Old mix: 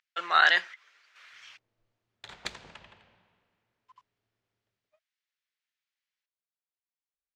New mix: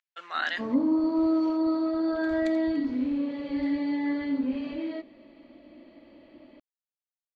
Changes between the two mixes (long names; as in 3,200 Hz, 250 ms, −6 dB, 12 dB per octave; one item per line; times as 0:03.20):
speech −9.0 dB
first sound: unmuted
second sound −10.5 dB